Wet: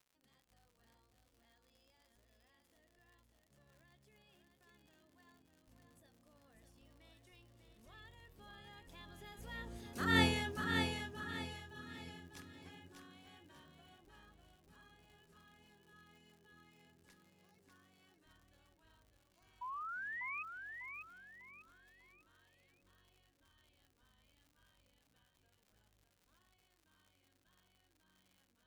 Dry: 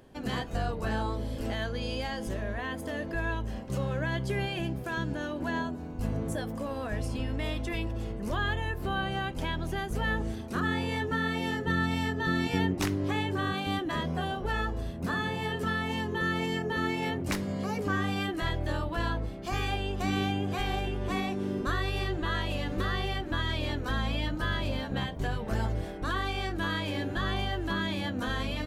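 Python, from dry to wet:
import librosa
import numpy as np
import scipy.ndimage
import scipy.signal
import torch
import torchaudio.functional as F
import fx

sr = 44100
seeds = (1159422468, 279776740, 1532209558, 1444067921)

p1 = fx.doppler_pass(x, sr, speed_mps=18, closest_m=1.1, pass_at_s=10.21)
p2 = fx.high_shelf(p1, sr, hz=2600.0, db=9.5)
p3 = fx.dmg_crackle(p2, sr, seeds[0], per_s=90.0, level_db=-58.0)
p4 = fx.spec_paint(p3, sr, seeds[1], shape='rise', start_s=19.61, length_s=0.82, low_hz=960.0, high_hz=2600.0, level_db=-45.0)
p5 = p4 + fx.echo_feedback(p4, sr, ms=597, feedback_pct=34, wet_db=-5.5, dry=0)
y = F.gain(torch.from_numpy(p5), 1.0).numpy()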